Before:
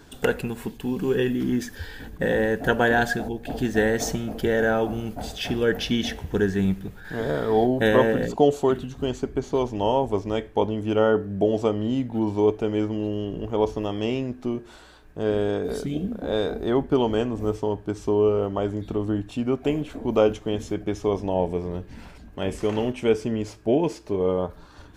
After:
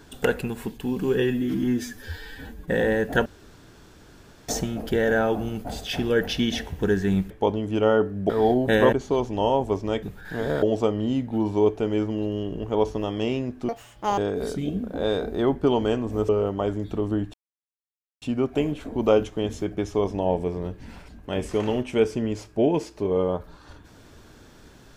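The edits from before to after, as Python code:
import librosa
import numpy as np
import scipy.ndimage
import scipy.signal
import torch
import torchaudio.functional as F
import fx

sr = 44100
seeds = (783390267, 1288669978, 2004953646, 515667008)

y = fx.edit(x, sr, fx.stretch_span(start_s=1.22, length_s=0.97, factor=1.5),
    fx.room_tone_fill(start_s=2.77, length_s=1.23),
    fx.swap(start_s=6.82, length_s=0.6, other_s=10.45, other_length_s=0.99),
    fx.cut(start_s=8.05, length_s=1.3),
    fx.speed_span(start_s=14.5, length_s=0.96, speed=1.95),
    fx.cut(start_s=17.57, length_s=0.69),
    fx.insert_silence(at_s=19.31, length_s=0.88), tone=tone)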